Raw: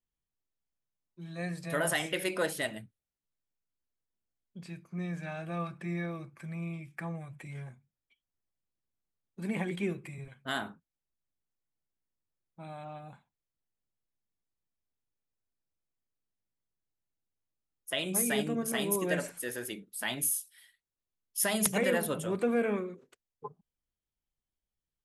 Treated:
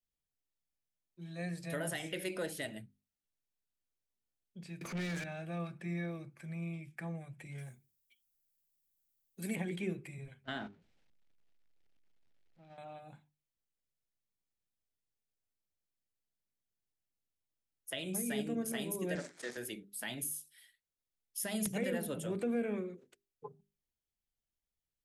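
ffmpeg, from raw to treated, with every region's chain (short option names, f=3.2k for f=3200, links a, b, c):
-filter_complex "[0:a]asettb=1/sr,asplit=3[a][b][c];[a]atrim=end=4.814[d];[b]atrim=start=4.81:end=5.24,asetpts=PTS-STARTPTS,afade=t=in:d=0.004:c=qsin,afade=t=out:st=0.426:d=0.004:c=qsin,acompressor=mode=upward:threshold=-41dB:ratio=2.5:attack=3.2:release=140:knee=2.83:detection=peak,asplit=2[e][f];[f]highpass=f=720:p=1,volume=28dB,asoftclip=type=tanh:threshold=-28dB[g];[e][g]amix=inputs=2:normalize=0,lowpass=f=6.5k:p=1,volume=-6dB[h];[c]atrim=start=5.236[i];[d][h]acrossfade=d=0.004:c1=hsin:c2=qsin[j];[j][i]acrossfade=d=0.004:c1=qsin:c2=hsin,asettb=1/sr,asplit=3[k][l][m];[k]atrim=end=7.584[n];[l]atrim=start=7.58:end=9.56,asetpts=PTS-STARTPTS,afade=t=in:d=0.004:c=qsin,afade=t=out:st=1.976:d=0.004:c=qsin,aemphasis=mode=production:type=75fm,bandreject=f=930:w=7.5[o];[m]atrim=start=9.556[p];[n][o]acrossfade=d=0.004:c1=hsin:c2=qsin[q];[q][p]acrossfade=d=0.004:c1=qsin:c2=hsin,asettb=1/sr,asplit=3[r][s][t];[r]atrim=end=10.444[u];[s]atrim=start=10.44:end=12.78,asetpts=PTS-STARTPTS,afade=t=in:d=0.004:c=qsin,afade=t=out:st=2.336:d=0.004:c=qsin,aeval=exprs='val(0)+0.5*0.00562*sgn(val(0))':c=same,agate=range=-14dB:threshold=-40dB:ratio=16:release=100:detection=peak,lowpass=3.5k[v];[t]atrim=start=12.776[w];[u][v]acrossfade=d=0.004:c1=hsin:c2=qsin[x];[x][w]acrossfade=d=0.004:c1=qsin:c2=hsin,asettb=1/sr,asplit=3[y][z][aa];[y]atrim=end=19.154[ab];[z]atrim=start=19.15:end=19.57,asetpts=PTS-STARTPTS,afade=t=in:d=0.004:c=qsin,afade=t=out:st=0.416:d=0.004:c=qsin,acrusher=bits=7:dc=4:mix=0:aa=0.000001,highpass=190,equalizer=f=1.3k:t=q:w=4:g=3,equalizer=f=2k:t=q:w=4:g=3,equalizer=f=2.8k:t=q:w=4:g=-7,lowpass=f=7.2k:w=0.5412,lowpass=f=7.2k:w=1.3066[ac];[aa]atrim=start=19.566[ad];[ab][ac]acrossfade=d=0.004:c1=hsin:c2=qsin[ae];[ae][ad]acrossfade=d=0.004:c1=qsin:c2=hsin,equalizer=f=1.1k:w=2.2:g=-7.5,acrossover=split=340[af][ag];[ag]acompressor=threshold=-37dB:ratio=2.5[ah];[af][ah]amix=inputs=2:normalize=0,bandreject=f=50:t=h:w=6,bandreject=f=100:t=h:w=6,bandreject=f=150:t=h:w=6,bandreject=f=200:t=h:w=6,bandreject=f=250:t=h:w=6,bandreject=f=300:t=h:w=6,bandreject=f=350:t=h:w=6,bandreject=f=400:t=h:w=6,volume=-2.5dB"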